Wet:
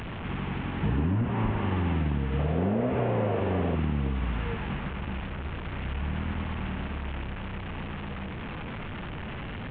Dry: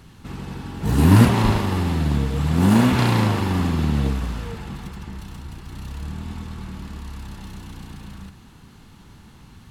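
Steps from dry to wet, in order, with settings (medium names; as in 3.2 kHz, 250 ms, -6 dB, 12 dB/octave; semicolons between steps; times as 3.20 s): one-bit delta coder 16 kbps, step -30 dBFS; 2.39–3.76 s: high-order bell 530 Hz +12.5 dB 1 oct; compression 10:1, threshold -23 dBFS, peak gain reduction 15 dB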